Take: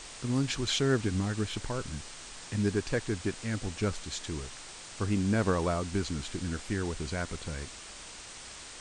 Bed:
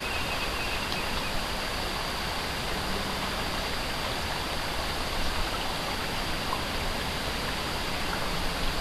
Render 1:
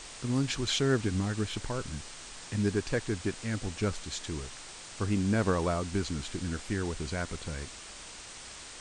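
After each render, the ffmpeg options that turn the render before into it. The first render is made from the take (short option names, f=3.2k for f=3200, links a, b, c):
-af anull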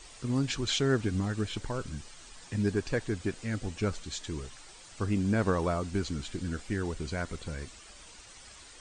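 -af "afftdn=nr=9:nf=-46"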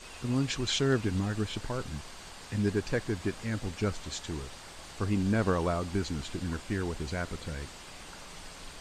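-filter_complex "[1:a]volume=-18dB[a];[0:a][a]amix=inputs=2:normalize=0"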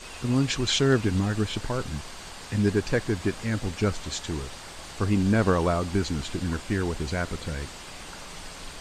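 -af "volume=5.5dB"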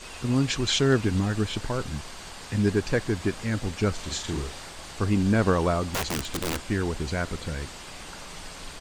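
-filter_complex "[0:a]asplit=3[a][b][c];[a]afade=t=out:st=3.97:d=0.02[d];[b]asplit=2[e][f];[f]adelay=42,volume=-5dB[g];[e][g]amix=inputs=2:normalize=0,afade=t=in:st=3.97:d=0.02,afade=t=out:st=4.68:d=0.02[h];[c]afade=t=in:st=4.68:d=0.02[i];[d][h][i]amix=inputs=3:normalize=0,asettb=1/sr,asplit=3[j][k][l];[j]atrim=end=5.874[m];[k]atrim=start=5.87:end=6.6,asetpts=PTS-STARTPTS,afade=t=in:d=0.004:c=qsin,afade=t=out:st=0.726:d=0.004:c=qsin,aeval=exprs='(mod(13.3*val(0)+1,2)-1)/13.3':c=same[n];[l]atrim=start=6.596[o];[m][n]acrossfade=d=0.004:c1=hsin:c2=qsin[p];[p][o]acrossfade=d=0.004:c1=qsin:c2=hsin"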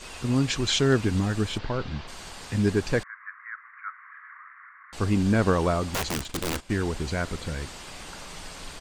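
-filter_complex "[0:a]asplit=3[a][b][c];[a]afade=t=out:st=1.57:d=0.02[d];[b]lowpass=f=4.5k:w=0.5412,lowpass=f=4.5k:w=1.3066,afade=t=in:st=1.57:d=0.02,afade=t=out:st=2.07:d=0.02[e];[c]afade=t=in:st=2.07:d=0.02[f];[d][e][f]amix=inputs=3:normalize=0,asettb=1/sr,asplit=3[g][h][i];[g]atrim=end=3.034[j];[h]atrim=start=3.03:end=4.93,asetpts=PTS-STARTPTS,afade=t=in:d=0.004:c=qsin,afade=t=out:st=1.896:d=0.004:c=qsin,asuperpass=centerf=1500:order=12:qfactor=1.5[k];[i]atrim=start=4.926[l];[j][k]acrossfade=d=0.004:c1=hsin:c2=qsin[m];[m][l]acrossfade=d=0.004:c1=qsin:c2=hsin,asettb=1/sr,asplit=3[n][o][p];[n]atrim=end=6.194[q];[o]atrim=start=6.19:end=6.87,asetpts=PTS-STARTPTS,afade=t=in:d=0.004:c=qsin,afade=t=out:st=0.676:d=0.004:c=qsin,agate=range=-12dB:threshold=-35dB:ratio=16:release=100:detection=peak[r];[p]atrim=start=6.866[s];[q][r]acrossfade=d=0.004:c1=hsin:c2=qsin[t];[t][s]acrossfade=d=0.004:c1=qsin:c2=hsin"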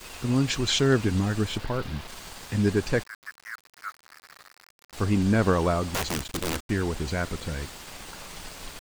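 -af "aeval=exprs='val(0)*gte(abs(val(0)),0.00891)':c=same"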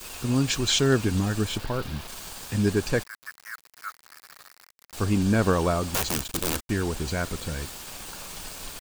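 -af "highshelf=f=7.7k:g=9.5,bandreject=f=2k:w=13"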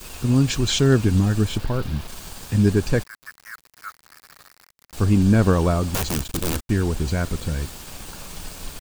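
-af "lowshelf=f=290:g=9"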